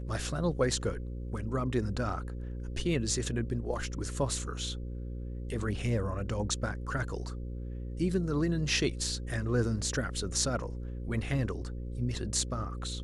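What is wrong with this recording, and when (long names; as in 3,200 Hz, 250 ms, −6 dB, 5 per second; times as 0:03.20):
mains buzz 60 Hz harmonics 9 −38 dBFS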